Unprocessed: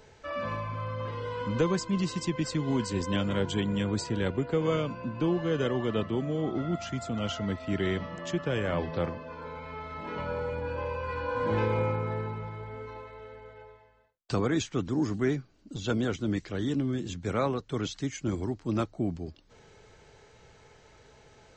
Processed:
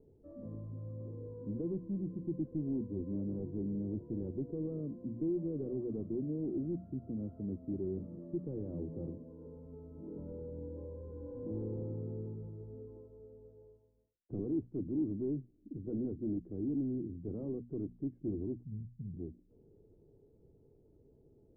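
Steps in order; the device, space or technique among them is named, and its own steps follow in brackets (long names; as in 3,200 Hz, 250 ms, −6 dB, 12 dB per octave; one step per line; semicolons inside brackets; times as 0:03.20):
0:18.63–0:19.14: elliptic band-stop filter 170–2,400 Hz
mains-hum notches 60/120/180/240 Hz
overdriven synthesiser ladder filter (soft clipping −28 dBFS, distortion −10 dB; transistor ladder low-pass 400 Hz, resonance 45%)
level +2.5 dB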